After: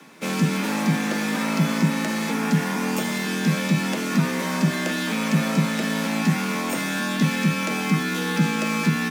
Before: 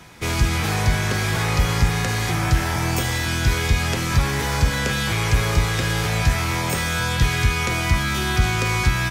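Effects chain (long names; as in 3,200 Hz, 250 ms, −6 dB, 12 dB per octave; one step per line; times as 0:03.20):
frequency shifter +110 Hz
in parallel at −11.5 dB: sample-rate reduction 7,400 Hz, jitter 0%
on the sum: level −4.5 dB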